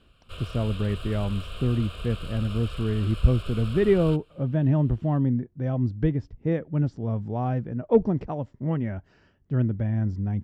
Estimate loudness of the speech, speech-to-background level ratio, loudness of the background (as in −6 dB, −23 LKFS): −26.0 LKFS, 13.5 dB, −39.5 LKFS